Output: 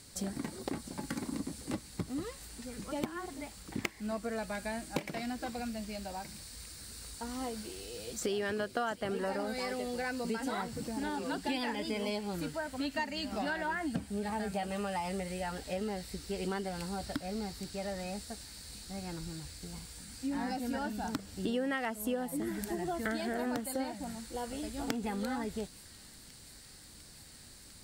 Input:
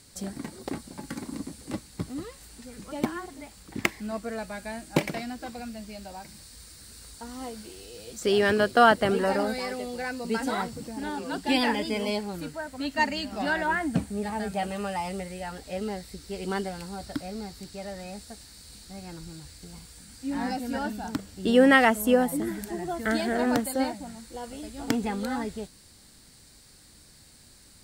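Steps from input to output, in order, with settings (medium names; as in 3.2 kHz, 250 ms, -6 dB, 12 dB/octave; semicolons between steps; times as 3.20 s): compression 6:1, threshold -32 dBFS, peak gain reduction 18 dB; feedback echo behind a high-pass 700 ms, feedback 82%, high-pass 2.6 kHz, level -17 dB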